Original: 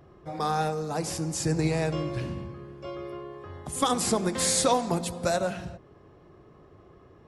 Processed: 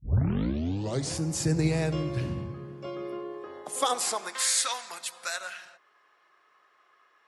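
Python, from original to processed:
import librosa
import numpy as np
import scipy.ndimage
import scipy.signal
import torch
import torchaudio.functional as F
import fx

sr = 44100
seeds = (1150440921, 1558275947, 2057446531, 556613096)

y = fx.tape_start_head(x, sr, length_s=1.19)
y = fx.dynamic_eq(y, sr, hz=830.0, q=0.92, threshold_db=-38.0, ratio=4.0, max_db=-4)
y = fx.filter_sweep_highpass(y, sr, from_hz=78.0, to_hz=1500.0, start_s=2.29, end_s=4.6, q=1.5)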